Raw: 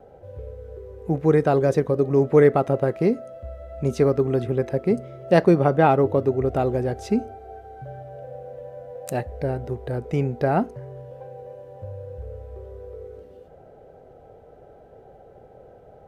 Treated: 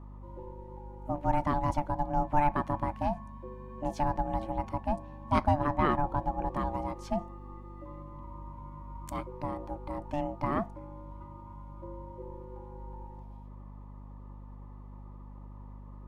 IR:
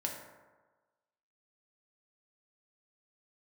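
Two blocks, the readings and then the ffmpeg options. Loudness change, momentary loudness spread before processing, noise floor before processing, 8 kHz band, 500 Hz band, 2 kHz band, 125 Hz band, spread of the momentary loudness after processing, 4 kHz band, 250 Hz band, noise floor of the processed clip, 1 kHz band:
−11.0 dB, 22 LU, −49 dBFS, can't be measured, −16.5 dB, −9.5 dB, −11.0 dB, 21 LU, −7.5 dB, −11.0 dB, −47 dBFS, −2.5 dB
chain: -af "aeval=exprs='val(0)*sin(2*PI*440*n/s)':channel_layout=same,aeval=exprs='val(0)+0.0126*(sin(2*PI*50*n/s)+sin(2*PI*2*50*n/s)/2+sin(2*PI*3*50*n/s)/3+sin(2*PI*4*50*n/s)/4+sin(2*PI*5*50*n/s)/5)':channel_layout=same,volume=-7dB"

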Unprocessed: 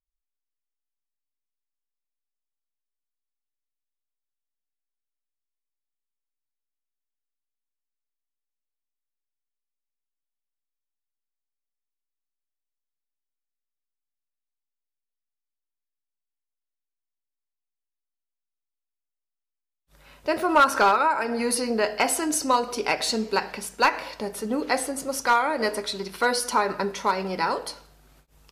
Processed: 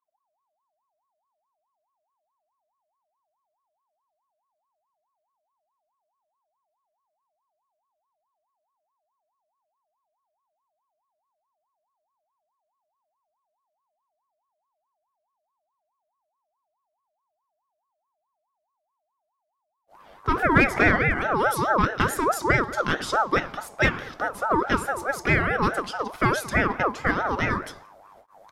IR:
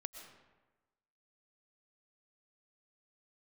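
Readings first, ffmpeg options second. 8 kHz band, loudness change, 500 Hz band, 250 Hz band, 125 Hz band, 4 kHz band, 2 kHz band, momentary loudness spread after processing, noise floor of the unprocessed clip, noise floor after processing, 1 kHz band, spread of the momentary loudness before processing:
−8.5 dB, +1.0 dB, −0.5 dB, +2.0 dB, can't be measured, −5.5 dB, +5.0 dB, 9 LU, below −85 dBFS, −80 dBFS, −1.5 dB, 11 LU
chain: -af "tiltshelf=frequency=1100:gain=7,bandreject=frequency=1900:width=17,aeval=exprs='val(0)*sin(2*PI*860*n/s+860*0.3/4.7*sin(2*PI*4.7*n/s))':channel_layout=same,volume=1.5dB"

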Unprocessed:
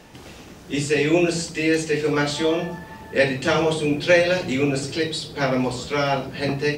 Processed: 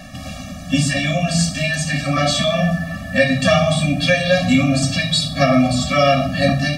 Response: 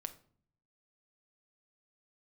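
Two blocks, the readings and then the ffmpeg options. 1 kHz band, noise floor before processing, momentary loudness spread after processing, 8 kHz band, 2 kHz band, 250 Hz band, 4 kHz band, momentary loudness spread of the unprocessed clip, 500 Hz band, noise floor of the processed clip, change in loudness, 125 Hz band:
+6.5 dB, −43 dBFS, 6 LU, +7.5 dB, +4.5 dB, +5.5 dB, +8.0 dB, 9 LU, +1.5 dB, −32 dBFS, +5.0 dB, +10.0 dB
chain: -filter_complex "[0:a]acompressor=threshold=-21dB:ratio=3,asplit=2[link_01][link_02];[1:a]atrim=start_sample=2205,asetrate=23814,aresample=44100[link_03];[link_02][link_03]afir=irnorm=-1:irlink=0,volume=7.5dB[link_04];[link_01][link_04]amix=inputs=2:normalize=0,afftfilt=real='re*eq(mod(floor(b*sr/1024/270),2),0)':imag='im*eq(mod(floor(b*sr/1024/270),2),0)':win_size=1024:overlap=0.75,volume=2dB"

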